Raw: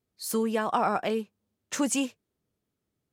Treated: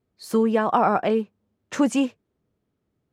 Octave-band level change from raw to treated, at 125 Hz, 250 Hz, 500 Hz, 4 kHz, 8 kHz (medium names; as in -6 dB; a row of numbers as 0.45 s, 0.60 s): +7.5 dB, +7.5 dB, +7.0 dB, 0.0 dB, -6.0 dB